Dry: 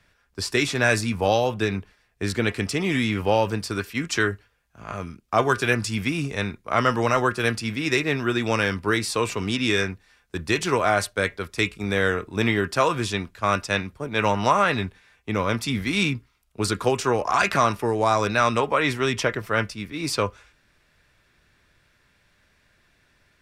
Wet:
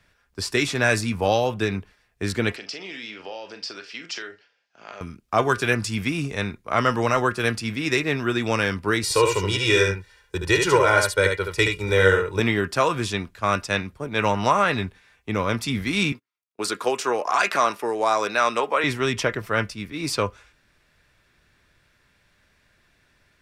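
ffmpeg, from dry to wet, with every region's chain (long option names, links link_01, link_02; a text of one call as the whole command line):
ffmpeg -i in.wav -filter_complex "[0:a]asettb=1/sr,asplit=3[link_01][link_02][link_03];[link_01]atrim=end=2.564[link_04];[link_02]atrim=start=2.56:end=5.01,asetpts=PTS-STARTPTS,afade=type=in:duration=0.004:curve=qsin,afade=type=out:start_time=2.446:duration=0.004:curve=qsin,acompressor=threshold=-30dB:ratio=5:attack=3.2:release=140:knee=1:detection=peak,highpass=420,equalizer=frequency=1100:width_type=q:width=4:gain=-7,equalizer=frequency=3000:width_type=q:width=4:gain=4,equalizer=frequency=5000:width_type=q:width=4:gain=8,lowpass=frequency=6000:width=0.5412,lowpass=frequency=6000:width=1.3066,asplit=2[link_05][link_06];[link_06]adelay=42,volume=-10.5dB[link_07];[link_05][link_07]amix=inputs=2:normalize=0,atrim=end_sample=108045[link_08];[link_03]atrim=start=5.006[link_09];[link_04][link_08]acrossfade=duration=0.004:curve1=hsin:curve2=qsin[link_10];[link_10][link_09]acrossfade=duration=0.004:curve1=qsin:curve2=hsin,asettb=1/sr,asplit=3[link_11][link_12][link_13];[link_11]atrim=end=9.034[link_14];[link_12]atrim=start=9.03:end=12.4,asetpts=PTS-STARTPTS,afade=type=in:duration=0.004:curve=qsin,afade=type=out:start_time=3.366:duration=0.004:curve=qsin,aecho=1:1:2.1:0.94,atrim=end_sample=148617,aecho=1:1:73:0.562,atrim=end_sample=148617[link_15];[link_13]atrim=start=12.396[link_16];[link_14][link_15]acrossfade=duration=0.004:curve1=hsin:curve2=qsin[link_17];[link_17][link_16]acrossfade=duration=0.004:curve1=qsin:curve2=hsin,asettb=1/sr,asplit=3[link_18][link_19][link_20];[link_18]atrim=end=16.124[link_21];[link_19]atrim=start=16.12:end=18.84,asetpts=PTS-STARTPTS,afade=type=in:duration=0.004:curve=qsin,afade=type=out:start_time=2.716:duration=0.004:curve=qsin,highpass=350,agate=range=-24dB:threshold=-48dB:ratio=16:release=100:detection=peak[link_22];[link_20]atrim=start=18.836[link_23];[link_21][link_22]acrossfade=duration=0.004:curve1=hsin:curve2=qsin[link_24];[link_24][link_23]acrossfade=duration=0.004:curve1=qsin:curve2=hsin" out.wav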